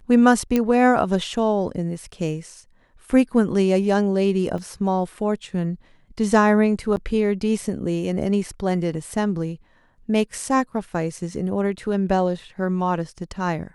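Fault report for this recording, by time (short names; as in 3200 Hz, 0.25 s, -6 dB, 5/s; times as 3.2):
0.56 pop -8 dBFS
4.58 gap 3 ms
6.96–6.97 gap 9.2 ms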